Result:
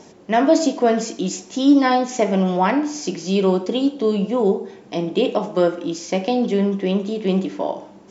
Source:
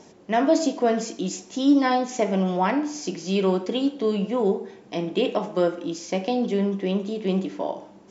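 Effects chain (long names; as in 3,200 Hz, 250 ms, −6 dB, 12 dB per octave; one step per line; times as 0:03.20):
0:03.17–0:05.55: dynamic equaliser 1,900 Hz, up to −5 dB, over −47 dBFS, Q 1.3
level +4.5 dB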